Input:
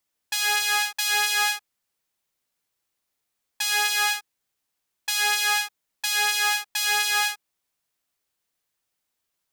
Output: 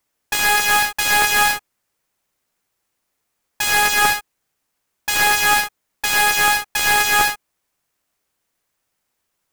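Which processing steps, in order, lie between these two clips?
half-waves squared off; bell 3700 Hz -4.5 dB 1.1 oct; gain +3.5 dB

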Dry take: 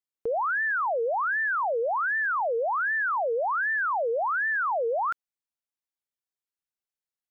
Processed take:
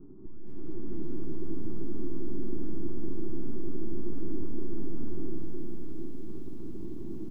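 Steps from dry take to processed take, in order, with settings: bell 630 Hz -12.5 dB 0.44 oct; limiter -30.5 dBFS, peak gain reduction 7 dB; band noise 100–770 Hz -68 dBFS; sine folder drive 18 dB, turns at -29.5 dBFS; reverb RT60 5.1 s, pre-delay 0.168 s, DRR -3.5 dB; full-wave rectifier; EQ curve 160 Hz 0 dB, 360 Hz +10 dB, 530 Hz -25 dB; outdoor echo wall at 52 m, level -16 dB; AGC gain up to 5 dB; LPF 1300 Hz 24 dB/oct; notches 60/120/180/240/300/360/420 Hz; lo-fi delay 0.465 s, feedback 55%, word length 9-bit, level -14.5 dB

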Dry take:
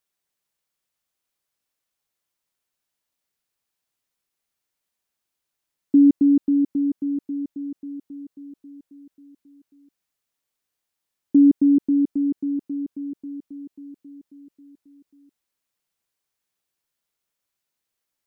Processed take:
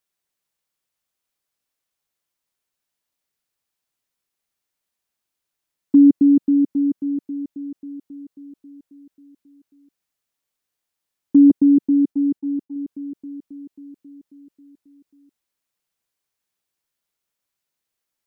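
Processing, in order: 11.5–12.76 expander -25 dBFS; dynamic EQ 200 Hz, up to +4 dB, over -26 dBFS, Q 0.89

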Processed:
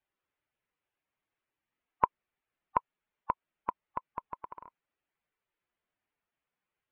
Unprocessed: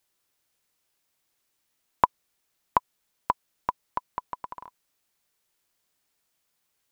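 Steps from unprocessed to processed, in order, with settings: bin magnitudes rounded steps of 15 dB; LPF 2700 Hz 24 dB/oct; gain -5.5 dB

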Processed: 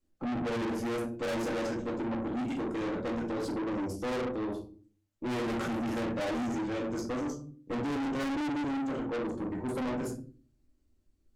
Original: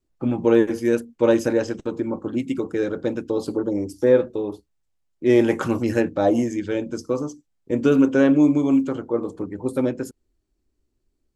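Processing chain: shoebox room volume 270 m³, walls furnished, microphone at 2.2 m; tube stage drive 27 dB, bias 0.3; gain -4 dB

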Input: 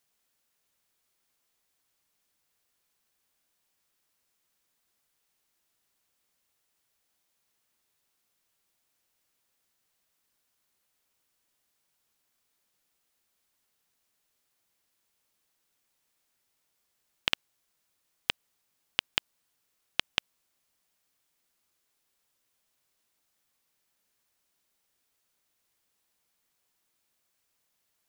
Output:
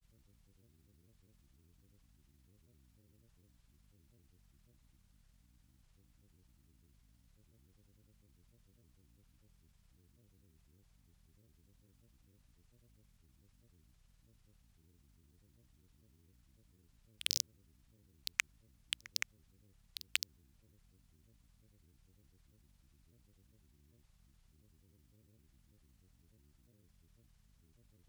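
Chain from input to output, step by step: wavefolder -10.5 dBFS; hum 60 Hz, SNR 15 dB; grains, grains 20/s, pitch spread up and down by 12 st

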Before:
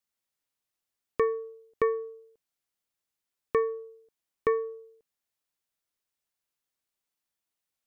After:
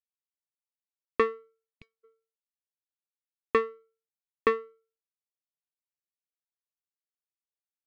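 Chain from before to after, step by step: spectral gain 1.75–2.04, 230–2100 Hz -27 dB; power-law curve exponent 2; gain +6 dB

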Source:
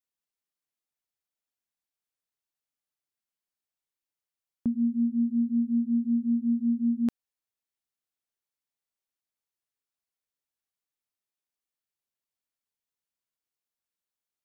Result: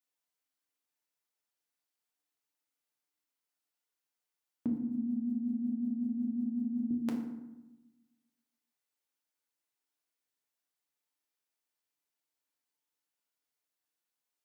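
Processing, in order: HPF 340 Hz 6 dB/oct; 4.71–6.91 negative-ratio compressor -38 dBFS, ratio -1; FDN reverb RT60 1 s, low-frequency decay 1.4×, high-frequency decay 0.55×, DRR 0 dB

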